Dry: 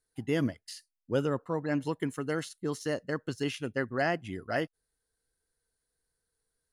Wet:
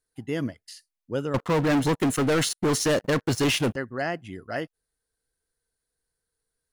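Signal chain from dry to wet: 1.34–3.76 sample leveller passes 5

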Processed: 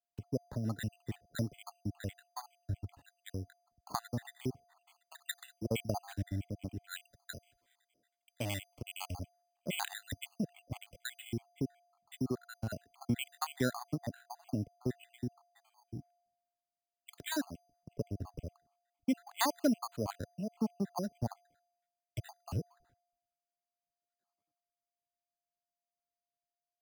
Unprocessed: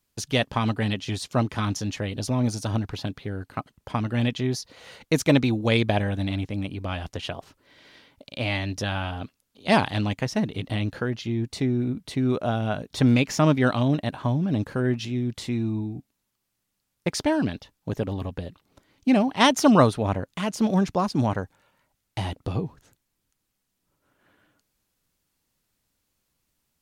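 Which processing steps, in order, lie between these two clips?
random spectral dropouts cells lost 73%; compressor 3:1, threshold -39 dBFS, peak gain reduction 18.5 dB; whine 700 Hz -65 dBFS; careless resampling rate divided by 8×, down filtered, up hold; three-band expander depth 100%

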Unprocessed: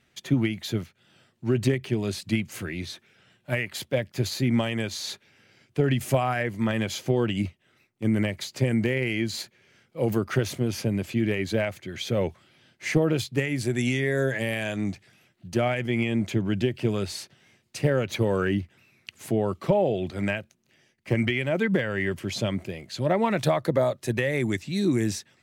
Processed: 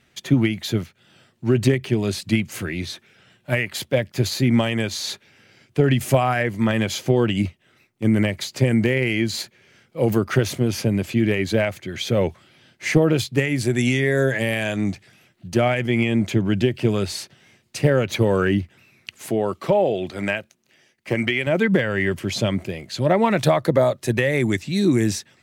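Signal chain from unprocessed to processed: 19.15–21.47 low shelf 180 Hz -11 dB; gain +5.5 dB

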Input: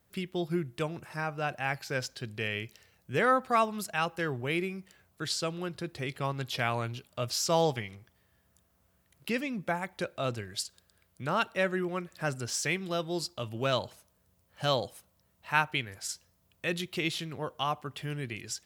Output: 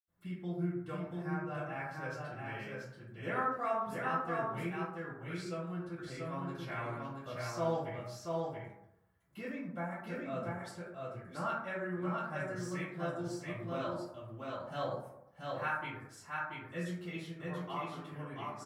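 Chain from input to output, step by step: flange 0.24 Hz, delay 0.6 ms, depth 5.5 ms, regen -73%; echo 0.683 s -3 dB; reverb RT60 0.80 s, pre-delay 76 ms; gain +9 dB

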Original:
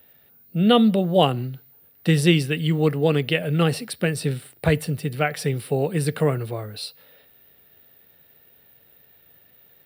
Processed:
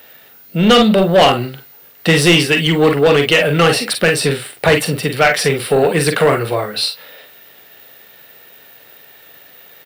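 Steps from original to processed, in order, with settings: bit-crush 11-bit; early reflections 42 ms -8.5 dB, 52 ms -12 dB; overdrive pedal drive 22 dB, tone 5100 Hz, clips at -2.5 dBFS; gain +1.5 dB

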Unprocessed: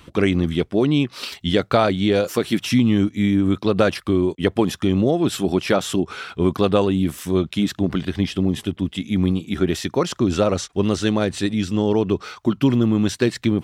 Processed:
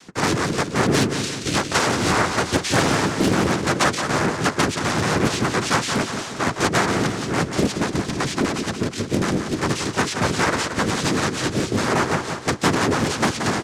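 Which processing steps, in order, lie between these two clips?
dynamic EQ 1800 Hz, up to -5 dB, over -37 dBFS, Q 1.4; wrapped overs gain 10.5 dB; noise vocoder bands 3; harmoniser -4 st -2 dB; feedback echo 0.177 s, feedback 50%, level -7 dB; Doppler distortion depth 0.58 ms; gain -3 dB

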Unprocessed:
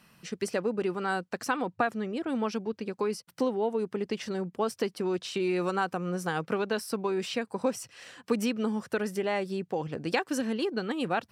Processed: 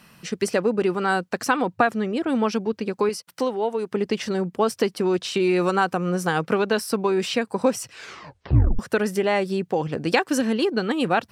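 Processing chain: 3.09–3.92 low shelf 330 Hz -11 dB; 7.9 tape stop 0.89 s; gain +8 dB

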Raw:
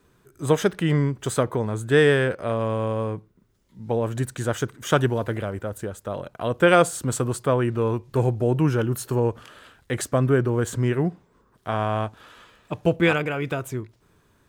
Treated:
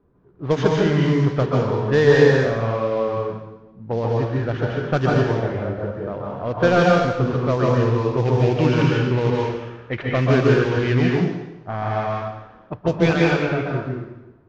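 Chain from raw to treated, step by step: CVSD 32 kbps; low-pass opened by the level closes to 750 Hz, open at -15 dBFS; 8.25–11.04 bell 2500 Hz +10 dB 1 oct; plate-style reverb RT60 1 s, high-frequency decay 0.9×, pre-delay 0.12 s, DRR -3 dB

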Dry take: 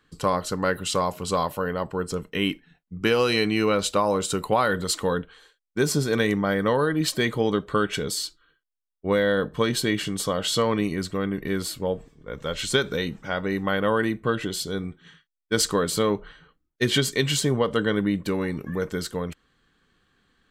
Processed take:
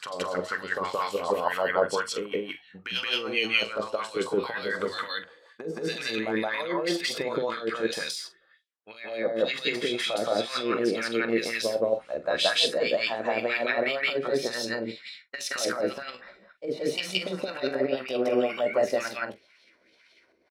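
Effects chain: gliding pitch shift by +5 st starting unshifted; de-esser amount 70%; high shelf 2800 Hz +10.5 dB; negative-ratio compressor -26 dBFS, ratio -0.5; wah 2 Hz 400–3400 Hz, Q 2.5; notches 50/100/150 Hz; doubler 44 ms -13 dB; on a send: reverse echo 0.172 s -3 dB; on the sum: gain +7 dB

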